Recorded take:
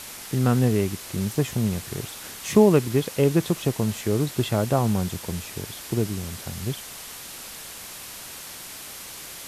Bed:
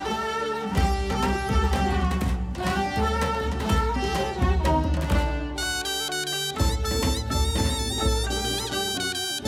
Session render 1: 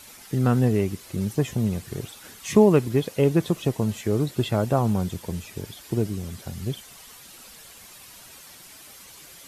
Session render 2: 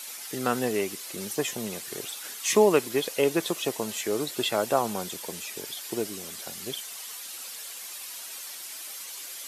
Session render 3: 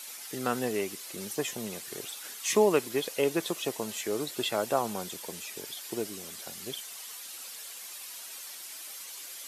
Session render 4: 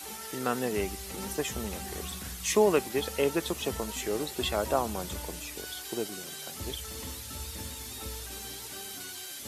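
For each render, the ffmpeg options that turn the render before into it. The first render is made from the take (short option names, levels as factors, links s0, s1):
-af "afftdn=nr=10:nf=-39"
-af "highpass=390,highshelf=f=2100:g=8"
-af "volume=0.668"
-filter_complex "[1:a]volume=0.126[s0];[0:a][s0]amix=inputs=2:normalize=0"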